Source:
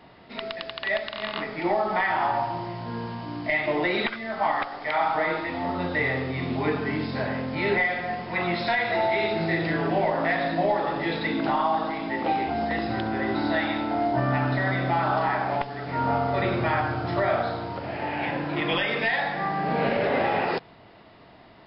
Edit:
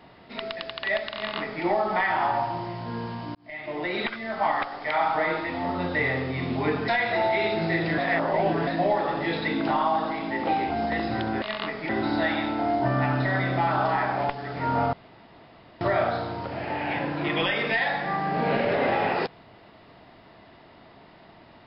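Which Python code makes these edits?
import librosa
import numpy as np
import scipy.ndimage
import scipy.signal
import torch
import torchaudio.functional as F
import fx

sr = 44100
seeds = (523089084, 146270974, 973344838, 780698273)

y = fx.edit(x, sr, fx.duplicate(start_s=1.16, length_s=0.47, to_s=13.21),
    fx.fade_in_span(start_s=3.35, length_s=0.9),
    fx.cut(start_s=6.88, length_s=1.79),
    fx.reverse_span(start_s=9.77, length_s=0.69),
    fx.room_tone_fill(start_s=16.25, length_s=0.88), tone=tone)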